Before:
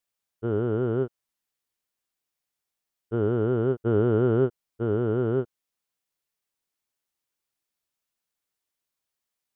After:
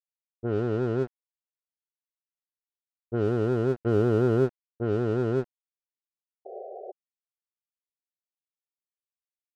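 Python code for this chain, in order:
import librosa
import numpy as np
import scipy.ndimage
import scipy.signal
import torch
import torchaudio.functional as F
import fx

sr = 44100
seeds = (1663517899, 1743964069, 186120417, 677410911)

y = np.sign(x) * np.maximum(np.abs(x) - 10.0 ** (-40.0 / 20.0), 0.0)
y = fx.env_lowpass(y, sr, base_hz=330.0, full_db=-20.0)
y = fx.spec_paint(y, sr, seeds[0], shape='noise', start_s=6.45, length_s=0.47, low_hz=360.0, high_hz=790.0, level_db=-40.0)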